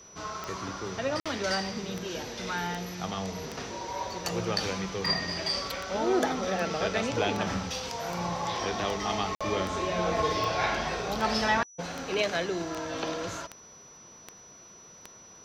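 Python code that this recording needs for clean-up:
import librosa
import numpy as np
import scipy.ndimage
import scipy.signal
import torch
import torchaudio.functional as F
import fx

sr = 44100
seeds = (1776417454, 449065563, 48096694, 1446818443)

y = fx.fix_declick_ar(x, sr, threshold=10.0)
y = fx.notch(y, sr, hz=5900.0, q=30.0)
y = fx.fix_interpolate(y, sr, at_s=(1.2, 9.35), length_ms=56.0)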